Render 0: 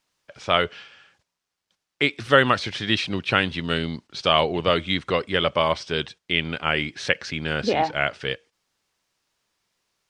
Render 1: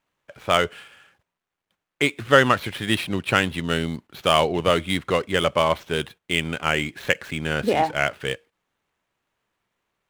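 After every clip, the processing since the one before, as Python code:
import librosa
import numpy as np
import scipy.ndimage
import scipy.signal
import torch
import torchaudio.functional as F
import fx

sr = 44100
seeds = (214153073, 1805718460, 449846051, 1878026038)

y = scipy.signal.medfilt(x, 9)
y = y * 10.0 ** (1.5 / 20.0)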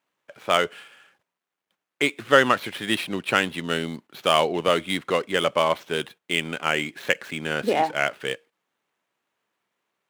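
y = scipy.signal.sosfilt(scipy.signal.butter(2, 200.0, 'highpass', fs=sr, output='sos'), x)
y = y * 10.0 ** (-1.0 / 20.0)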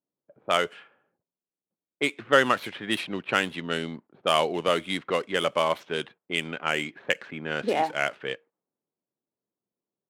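y = fx.env_lowpass(x, sr, base_hz=370.0, full_db=-19.5)
y = fx.low_shelf(y, sr, hz=67.0, db=-6.5)
y = y * 10.0 ** (-3.0 / 20.0)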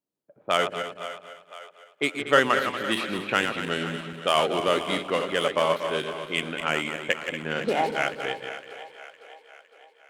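y = fx.reverse_delay_fb(x, sr, ms=118, feedback_pct=59, wet_db=-7)
y = fx.echo_split(y, sr, split_hz=450.0, low_ms=127, high_ms=509, feedback_pct=52, wet_db=-13.5)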